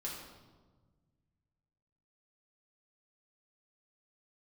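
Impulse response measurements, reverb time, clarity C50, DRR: 1.4 s, 2.5 dB, -4.5 dB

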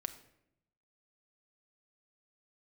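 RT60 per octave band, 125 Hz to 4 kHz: 1.2, 1.0, 0.85, 0.70, 0.70, 0.55 s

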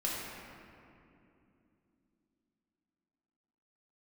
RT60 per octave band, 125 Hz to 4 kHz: 3.6, 4.4, 3.1, 2.5, 2.2, 1.5 s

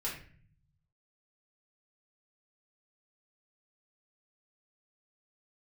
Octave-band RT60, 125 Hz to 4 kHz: 1.4, 1.0, 0.50, 0.40, 0.50, 0.35 s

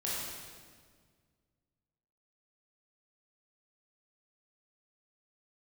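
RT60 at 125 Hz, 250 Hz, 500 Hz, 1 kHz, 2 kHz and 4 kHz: 2.5, 2.2, 1.9, 1.6, 1.5, 1.4 s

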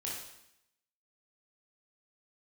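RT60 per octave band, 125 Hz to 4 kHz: 0.80, 0.85, 0.75, 0.80, 0.80, 0.80 s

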